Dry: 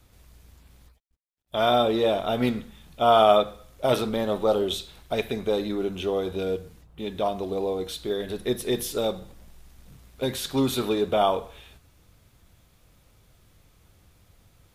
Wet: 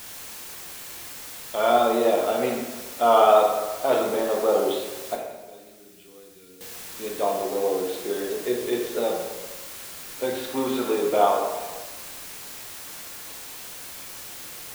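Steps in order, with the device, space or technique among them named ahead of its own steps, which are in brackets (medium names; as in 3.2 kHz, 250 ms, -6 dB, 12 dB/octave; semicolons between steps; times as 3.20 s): wax cylinder (band-pass 320–2400 Hz; wow and flutter; white noise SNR 13 dB); 5.15–6.61 s: amplifier tone stack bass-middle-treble 6-0-2; plate-style reverb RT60 1.3 s, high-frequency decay 0.6×, DRR 0 dB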